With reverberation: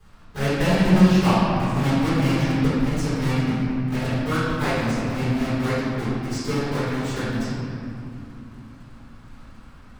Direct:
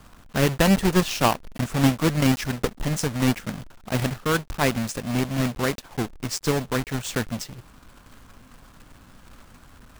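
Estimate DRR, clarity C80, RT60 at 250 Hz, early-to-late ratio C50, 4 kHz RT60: -14.5 dB, -1.5 dB, 4.4 s, -4.0 dB, 1.6 s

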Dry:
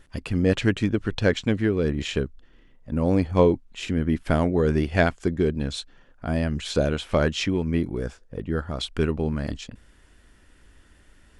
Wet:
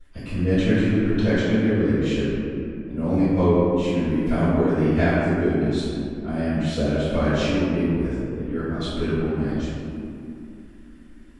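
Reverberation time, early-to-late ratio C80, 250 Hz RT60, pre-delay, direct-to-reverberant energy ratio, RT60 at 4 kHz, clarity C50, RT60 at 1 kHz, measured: 2.8 s, -1.5 dB, 4.5 s, 3 ms, -18.5 dB, 1.2 s, -4.0 dB, 2.5 s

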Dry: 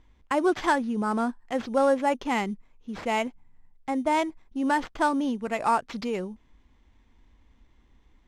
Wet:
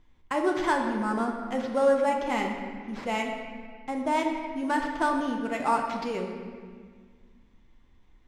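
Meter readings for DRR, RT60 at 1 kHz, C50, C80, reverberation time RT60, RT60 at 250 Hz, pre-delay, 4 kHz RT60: 1.0 dB, 1.7 s, 4.0 dB, 5.0 dB, 1.7 s, 2.3 s, 5 ms, 1.4 s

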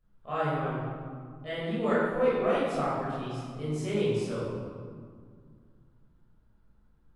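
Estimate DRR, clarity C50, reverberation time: -10.0 dB, -2.5 dB, 2.0 s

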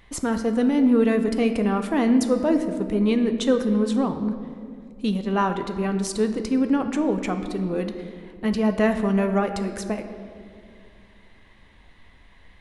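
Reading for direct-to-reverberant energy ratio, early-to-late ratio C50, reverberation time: 7.0 dB, 9.0 dB, 2.3 s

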